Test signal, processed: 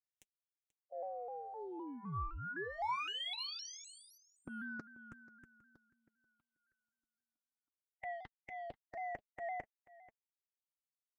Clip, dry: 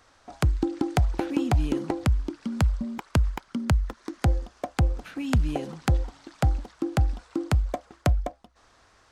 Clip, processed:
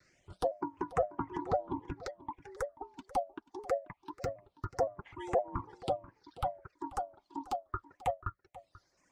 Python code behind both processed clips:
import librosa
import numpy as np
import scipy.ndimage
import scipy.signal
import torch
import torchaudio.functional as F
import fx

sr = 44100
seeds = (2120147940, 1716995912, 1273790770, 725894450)

p1 = fx.hpss(x, sr, part='harmonic', gain_db=-11)
p2 = fx.notch(p1, sr, hz=3200.0, q=24.0)
p3 = fx.env_lowpass_down(p2, sr, base_hz=930.0, full_db=-24.5)
p4 = fx.dynamic_eq(p3, sr, hz=540.0, q=1.6, threshold_db=-47.0, ratio=4.0, max_db=4)
p5 = p4 * np.sin(2.0 * np.pi * 630.0 * np.arange(len(p4)) / sr)
p6 = fx.transient(p5, sr, attack_db=-8, sustain_db=-3)
p7 = 10.0 ** (-33.5 / 20.0) * np.tanh(p6 / 10.0 ** (-33.5 / 20.0))
p8 = p6 + (p7 * librosa.db_to_amplitude(-10.0))
p9 = fx.notch_comb(p8, sr, f0_hz=220.0)
p10 = fx.dereverb_blind(p9, sr, rt60_s=1.6)
p11 = fx.phaser_stages(p10, sr, stages=6, low_hz=120.0, high_hz=4400.0, hz=0.24, feedback_pct=20)
p12 = p11 + fx.echo_single(p11, sr, ms=486, db=-19.0, dry=0)
p13 = fx.vibrato_shape(p12, sr, shape='saw_down', rate_hz=3.9, depth_cents=100.0)
y = p13 * librosa.db_to_amplitude(1.5)